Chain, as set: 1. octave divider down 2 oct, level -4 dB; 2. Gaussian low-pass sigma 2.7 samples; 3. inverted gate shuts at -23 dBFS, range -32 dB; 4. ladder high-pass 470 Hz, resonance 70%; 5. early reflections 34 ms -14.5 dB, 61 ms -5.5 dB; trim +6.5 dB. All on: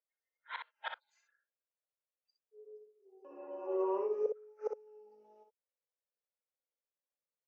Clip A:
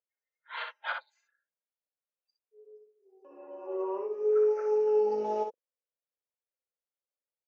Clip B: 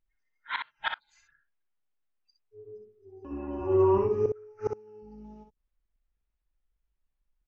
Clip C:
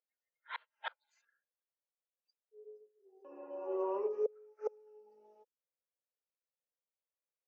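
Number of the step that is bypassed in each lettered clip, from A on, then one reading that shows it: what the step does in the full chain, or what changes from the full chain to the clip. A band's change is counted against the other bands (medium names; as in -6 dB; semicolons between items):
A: 3, momentary loudness spread change -8 LU; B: 4, momentary loudness spread change +3 LU; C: 5, momentary loudness spread change -1 LU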